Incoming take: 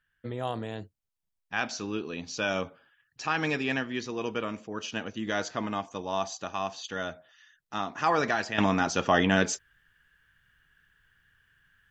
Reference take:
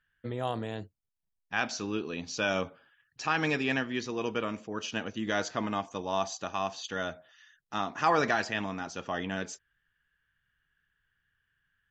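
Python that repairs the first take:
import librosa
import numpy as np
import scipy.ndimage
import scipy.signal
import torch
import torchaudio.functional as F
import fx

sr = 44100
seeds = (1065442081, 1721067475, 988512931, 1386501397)

y = fx.fix_level(x, sr, at_s=8.58, step_db=-11.0)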